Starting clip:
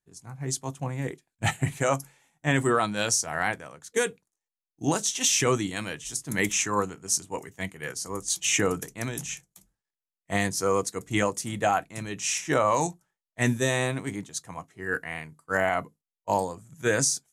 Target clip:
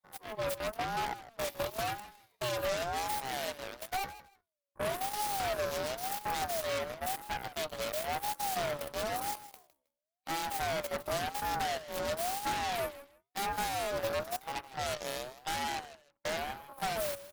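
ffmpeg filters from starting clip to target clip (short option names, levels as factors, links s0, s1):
-af "equalizer=f=120:t=o:w=0.33:g=-6.5,acompressor=threshold=0.0251:ratio=10,adynamicequalizer=threshold=0.00158:dfrequency=330:dqfactor=2.2:tfrequency=330:tqfactor=2.2:attack=5:release=100:ratio=0.375:range=3:mode=boostabove:tftype=bell,asetrate=72056,aresample=44100,atempo=0.612027,aeval=exprs='0.0891*(cos(1*acos(clip(val(0)/0.0891,-1,1)))-cos(1*PI/2))+0.0447*(cos(8*acos(clip(val(0)/0.0891,-1,1)))-cos(8*PI/2))':c=same,asoftclip=type=tanh:threshold=0.0501,aecho=1:1:158|316:0.178|0.0356,aeval=exprs='val(0)*sin(2*PI*700*n/s+700*0.2/0.96*sin(2*PI*0.96*n/s))':c=same"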